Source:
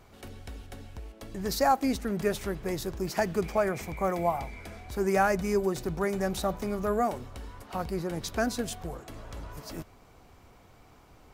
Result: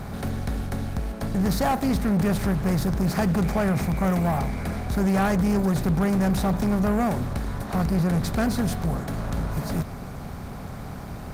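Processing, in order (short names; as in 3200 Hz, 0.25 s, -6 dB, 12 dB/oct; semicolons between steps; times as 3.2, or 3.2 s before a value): per-bin compression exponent 0.6; resonant low shelf 240 Hz +10.5 dB, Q 1.5; added harmonics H 2 -31 dB, 3 -21 dB, 5 -13 dB, 8 -32 dB, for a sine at -8.5 dBFS; gain -3.5 dB; Opus 32 kbps 48000 Hz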